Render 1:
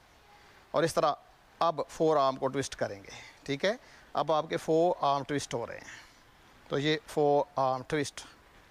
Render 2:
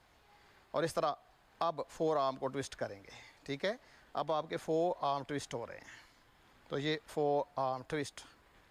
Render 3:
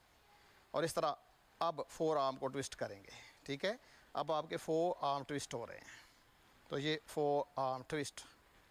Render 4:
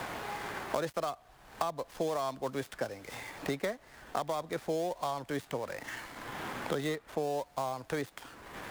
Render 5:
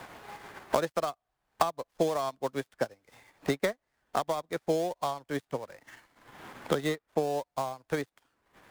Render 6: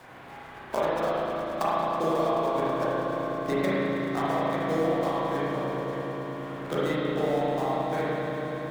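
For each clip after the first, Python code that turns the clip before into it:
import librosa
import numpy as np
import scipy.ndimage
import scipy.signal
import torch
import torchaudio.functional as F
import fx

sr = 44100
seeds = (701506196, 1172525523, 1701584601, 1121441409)

y1 = fx.notch(x, sr, hz=5800.0, q=11.0)
y1 = y1 * librosa.db_to_amplitude(-6.5)
y2 = fx.high_shelf(y1, sr, hz=5600.0, db=6.0)
y2 = y2 * librosa.db_to_amplitude(-3.0)
y3 = fx.dead_time(y2, sr, dead_ms=0.1)
y3 = fx.band_squash(y3, sr, depth_pct=100)
y3 = y3 * librosa.db_to_amplitude(3.5)
y4 = fx.upward_expand(y3, sr, threshold_db=-50.0, expansion=2.5)
y4 = y4 * librosa.db_to_amplitude(8.5)
y5 = fx.echo_swell(y4, sr, ms=108, loudest=5, wet_db=-14.5)
y5 = fx.rev_spring(y5, sr, rt60_s=2.9, pass_ms=(31, 36), chirp_ms=70, drr_db=-9.5)
y5 = y5 * librosa.db_to_amplitude(-6.0)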